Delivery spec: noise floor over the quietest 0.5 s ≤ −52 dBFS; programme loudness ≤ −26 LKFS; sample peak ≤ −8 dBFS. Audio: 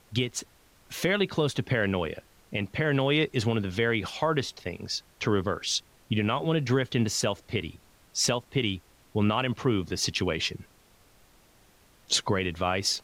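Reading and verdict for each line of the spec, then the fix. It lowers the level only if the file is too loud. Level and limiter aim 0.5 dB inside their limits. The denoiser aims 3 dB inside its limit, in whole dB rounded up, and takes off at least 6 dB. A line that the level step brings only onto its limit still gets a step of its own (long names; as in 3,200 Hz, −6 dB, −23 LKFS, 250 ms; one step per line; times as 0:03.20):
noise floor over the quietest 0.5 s −60 dBFS: in spec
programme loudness −28.0 LKFS: in spec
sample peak −12.0 dBFS: in spec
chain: no processing needed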